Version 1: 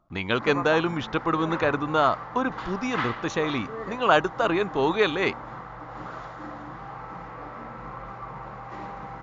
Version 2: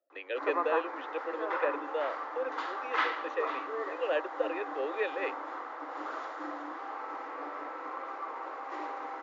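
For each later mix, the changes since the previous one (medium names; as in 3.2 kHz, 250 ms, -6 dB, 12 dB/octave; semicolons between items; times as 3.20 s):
speech: add vowel filter e; master: add Chebyshev high-pass 270 Hz, order 8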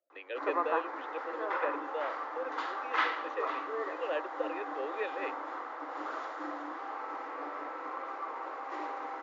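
speech -4.0 dB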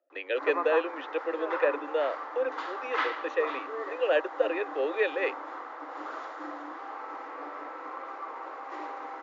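speech +9.5 dB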